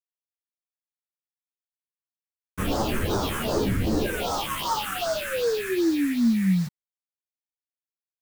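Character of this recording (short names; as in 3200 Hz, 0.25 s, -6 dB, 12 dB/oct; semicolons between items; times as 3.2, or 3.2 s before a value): aliases and images of a low sample rate 2100 Hz, jitter 20%; phasing stages 4, 2.6 Hz, lowest notch 720–2600 Hz; a quantiser's noise floor 8-bit, dither none; a shimmering, thickened sound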